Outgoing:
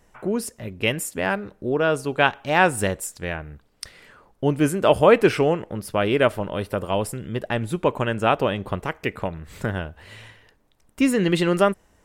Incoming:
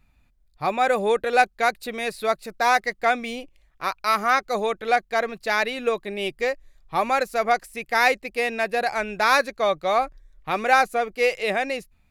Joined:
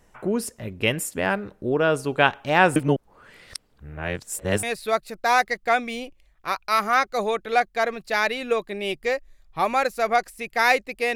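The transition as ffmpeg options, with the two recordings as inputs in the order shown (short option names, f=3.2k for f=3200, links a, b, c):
-filter_complex "[0:a]apad=whole_dur=11.15,atrim=end=11.15,asplit=2[a][b];[a]atrim=end=2.762[c];[b]atrim=start=2.758:end=4.632,asetpts=PTS-STARTPTS,areverse[d];[1:a]atrim=start=1.988:end=8.51[e];[c][d]acrossfade=d=0.004:c1=hsin:c2=hsin[f];[f][e]acrossfade=d=0.004:c1=hsin:c2=hsin"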